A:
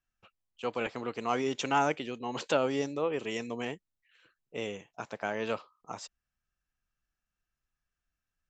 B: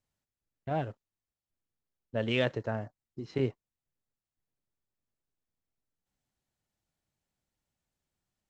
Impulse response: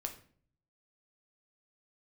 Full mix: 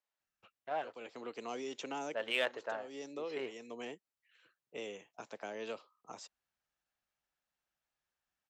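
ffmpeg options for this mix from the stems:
-filter_complex "[0:a]acrossover=split=240|600|2900[s0][s1][s2][s3];[s0]acompressor=threshold=0.00126:ratio=4[s4];[s1]acompressor=threshold=0.0178:ratio=4[s5];[s2]acompressor=threshold=0.00501:ratio=4[s6];[s3]acompressor=threshold=0.00562:ratio=4[s7];[s4][s5][s6][s7]amix=inputs=4:normalize=0,adelay=200,volume=0.631[s8];[1:a]highpass=660,adynamicsmooth=sensitivity=5.5:basefreq=4900,volume=0.944,asplit=2[s9][s10];[s10]apad=whole_len=383463[s11];[s8][s11]sidechaincompress=threshold=0.00562:ratio=5:attack=20:release=470[s12];[s12][s9]amix=inputs=2:normalize=0,highpass=f=180:p=1"

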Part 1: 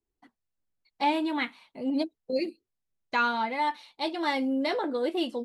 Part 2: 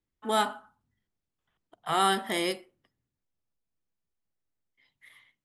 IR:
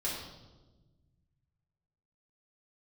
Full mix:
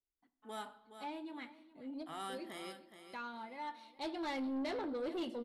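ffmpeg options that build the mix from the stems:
-filter_complex "[0:a]lowshelf=f=420:g=5.5,volume=0.299,afade=t=in:st=3.54:d=0.4:silence=0.334965,asplit=3[s0][s1][s2];[s1]volume=0.126[s3];[s2]volume=0.133[s4];[1:a]adelay=200,volume=0.112,asplit=3[s5][s6][s7];[s6]volume=0.1[s8];[s7]volume=0.316[s9];[2:a]atrim=start_sample=2205[s10];[s3][s8]amix=inputs=2:normalize=0[s11];[s11][s10]afir=irnorm=-1:irlink=0[s12];[s4][s9]amix=inputs=2:normalize=0,aecho=0:1:419|838|1257|1676:1|0.25|0.0625|0.0156[s13];[s0][s5][s12][s13]amix=inputs=4:normalize=0,asoftclip=type=tanh:threshold=0.02"

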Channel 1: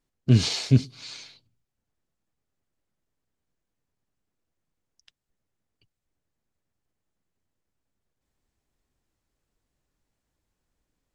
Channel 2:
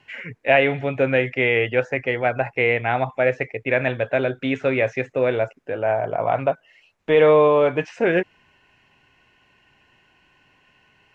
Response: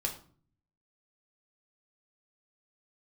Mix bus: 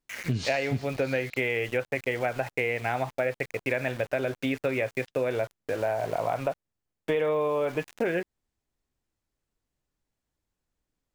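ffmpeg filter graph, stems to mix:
-filter_complex "[0:a]volume=0.596[s0];[1:a]aeval=exprs='val(0)*gte(abs(val(0)),0.02)':c=same,volume=0.794[s1];[s0][s1]amix=inputs=2:normalize=0,acompressor=threshold=0.0631:ratio=6"

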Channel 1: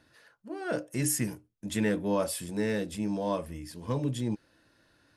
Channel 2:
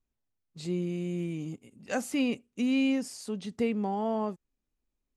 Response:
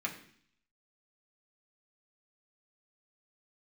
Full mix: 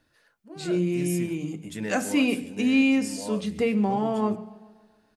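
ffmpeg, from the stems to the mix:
-filter_complex "[0:a]bandreject=f=60:t=h:w=6,bandreject=f=120:t=h:w=6,volume=0.562[s0];[1:a]volume=1.41,asplit=4[s1][s2][s3][s4];[s2]volume=0.562[s5];[s3]volume=0.133[s6];[s4]apad=whole_len=227712[s7];[s0][s7]sidechaincompress=threshold=0.0447:ratio=8:attack=37:release=661[s8];[2:a]atrim=start_sample=2205[s9];[s5][s9]afir=irnorm=-1:irlink=0[s10];[s6]aecho=0:1:140|280|420|560|700|840|980|1120|1260:1|0.57|0.325|0.185|0.106|0.0602|0.0343|0.0195|0.0111[s11];[s8][s1][s10][s11]amix=inputs=4:normalize=0"

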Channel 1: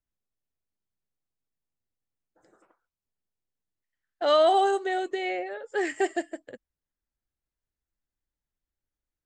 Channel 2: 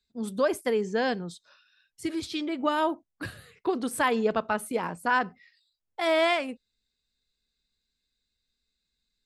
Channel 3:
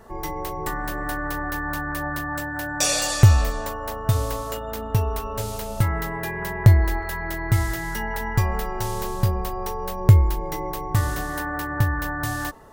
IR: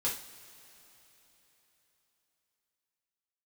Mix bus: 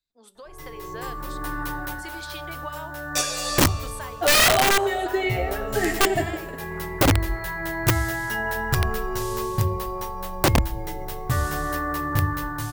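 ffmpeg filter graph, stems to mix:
-filter_complex "[0:a]asplit=2[s0][s1];[s1]adelay=3.9,afreqshift=2.4[s2];[s0][s2]amix=inputs=2:normalize=1,volume=0.708,asplit=3[s3][s4][s5];[s4]volume=0.282[s6];[s5]volume=0.447[s7];[1:a]highpass=650,acompressor=threshold=0.0158:ratio=6,volume=0.355,asplit=3[s8][s9][s10];[s9]volume=0.106[s11];[2:a]bandreject=f=50:t=h:w=6,bandreject=f=100:t=h:w=6,bandreject=f=150:t=h:w=6,bandreject=f=200:t=h:w=6,bandreject=f=250:t=h:w=6,bandreject=f=300:t=h:w=6,bandreject=f=350:t=h:w=6,bandreject=f=400:t=h:w=6,bandreject=f=450:t=h:w=6,asplit=2[s12][s13];[s13]adelay=11.5,afreqshift=0.36[s14];[s12][s14]amix=inputs=2:normalize=1,adelay=350,volume=0.422,asplit=2[s15][s16];[s16]volume=0.251[s17];[s10]apad=whole_len=577099[s18];[s15][s18]sidechaincompress=threshold=0.00126:ratio=16:attack=21:release=362[s19];[3:a]atrim=start_sample=2205[s20];[s6][s11][s17]amix=inputs=3:normalize=0[s21];[s21][s20]afir=irnorm=-1:irlink=0[s22];[s7]aecho=0:1:91|182|273|364|455:1|0.36|0.13|0.0467|0.0168[s23];[s3][s8][s19][s22][s23]amix=inputs=5:normalize=0,dynaudnorm=f=150:g=9:m=2.82,aeval=exprs='(mod(3.76*val(0)+1,2)-1)/3.76':c=same"

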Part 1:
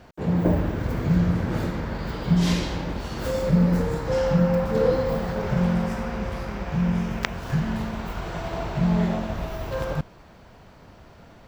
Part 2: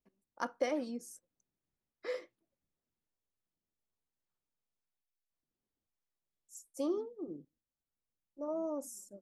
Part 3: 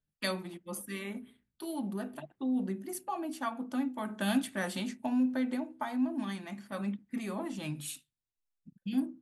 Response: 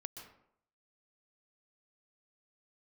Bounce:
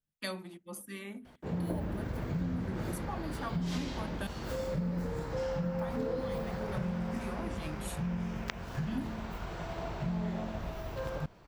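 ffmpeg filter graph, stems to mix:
-filter_complex "[0:a]adelay=1250,volume=0.376[s0];[2:a]volume=0.631,asplit=3[s1][s2][s3];[s1]atrim=end=4.27,asetpts=PTS-STARTPTS,afade=t=out:st=4.266:d=0.004:c=hsin[s4];[s2]atrim=start=4.27:end=5.73,asetpts=PTS-STARTPTS,volume=0[s5];[s3]atrim=start=5.73,asetpts=PTS-STARTPTS,afade=t=in:d=0.004:c=hsin[s6];[s4][s5][s6]concat=n=3:v=0:a=1[s7];[s0][s7]amix=inputs=2:normalize=0,acompressor=threshold=0.0282:ratio=4"

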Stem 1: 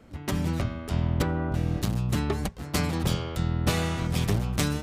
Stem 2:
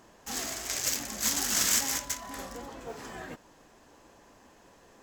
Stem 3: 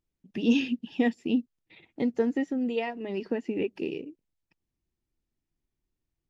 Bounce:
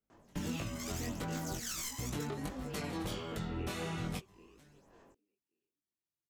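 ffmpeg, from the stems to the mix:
-filter_complex "[0:a]bandreject=f=4800:w=24,flanger=delay=5:depth=1.8:regen=-61:speed=1.1:shape=triangular,volume=1.33[s0];[1:a]aeval=exprs='clip(val(0),-1,0.0794)':c=same,aphaser=in_gain=1:out_gain=1:delay=1:decay=0.71:speed=0.82:type=sinusoidal,adelay=100,volume=0.299[s1];[2:a]highpass=140,highshelf=f=3000:g=7.5,volume=0.282,asplit=3[s2][s3][s4];[s3]volume=0.2[s5];[s4]apad=whole_len=212885[s6];[s0][s6]sidechaingate=range=0.0224:threshold=0.00112:ratio=16:detection=peak[s7];[s5]aecho=0:1:564|1128|1692:1|0.18|0.0324[s8];[s7][s1][s2][s8]amix=inputs=4:normalize=0,acrossover=split=240[s9][s10];[s9]acompressor=threshold=0.0178:ratio=1.5[s11];[s11][s10]amix=inputs=2:normalize=0,flanger=delay=19:depth=2.8:speed=1.5,alimiter=level_in=1.58:limit=0.0631:level=0:latency=1:release=417,volume=0.631"

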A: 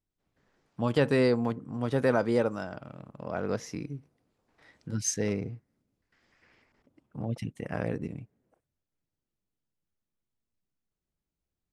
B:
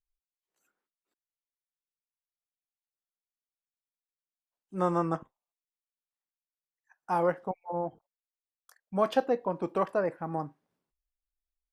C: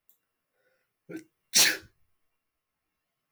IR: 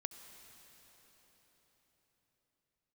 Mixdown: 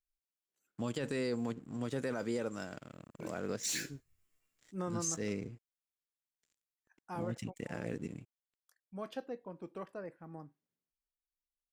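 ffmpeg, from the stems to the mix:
-filter_complex "[0:a]highpass=f=210:p=1,aeval=exprs='sgn(val(0))*max(abs(val(0))-0.0015,0)':c=same,volume=1,asplit=2[s0][s1];[1:a]volume=0.596,afade=t=out:st=6.71:d=0.75:silence=0.446684[s2];[2:a]adelay=2100,volume=1.06[s3];[s1]apad=whole_len=238692[s4];[s3][s4]sidechaincompress=threshold=0.0126:ratio=3:attack=36:release=1230[s5];[s0][s5]amix=inputs=2:normalize=0,equalizer=f=7300:w=3.8:g=13.5,alimiter=limit=0.1:level=0:latency=1:release=16,volume=1[s6];[s2][s6]amix=inputs=2:normalize=0,equalizer=f=850:t=o:w=1.5:g=-8,alimiter=level_in=1.26:limit=0.0631:level=0:latency=1:release=347,volume=0.794"

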